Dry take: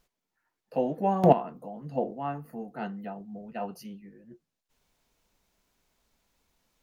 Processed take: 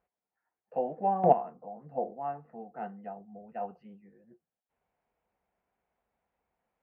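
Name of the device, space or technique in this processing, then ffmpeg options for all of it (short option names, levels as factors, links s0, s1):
bass cabinet: -filter_complex "[0:a]asettb=1/sr,asplit=3[s0][s1][s2];[s0]atrim=end=1.564[s3];[s1]atrim=start=1.56:end=2.24,asetpts=PTS-STARTPTS,afade=t=in:d=0.004:c=qsin,afade=t=out:st=0.676:d=0.004:c=qsin,equalizer=f=3100:w=4.2:g=-11.5[s4];[s2]atrim=start=2.236[s5];[s3][s4]acrossfade=d=0.004:c1=hsin:c2=qsin[s6];[s6][s5]acrossfade=d=0.004:c1=qsin:c2=hsin,highpass=63,equalizer=f=130:t=q:w=4:g=-6,equalizer=f=280:t=q:w=4:g=-5,equalizer=f=500:t=q:w=4:g=4,equalizer=f=750:t=q:w=4:g=9,lowpass=f=2300:w=0.5412,lowpass=f=2300:w=1.3066,volume=0.422"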